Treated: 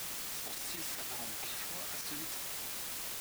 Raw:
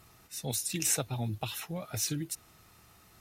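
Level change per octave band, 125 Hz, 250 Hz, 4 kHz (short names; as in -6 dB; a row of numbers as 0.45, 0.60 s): -20.5, -12.5, -1.5 dB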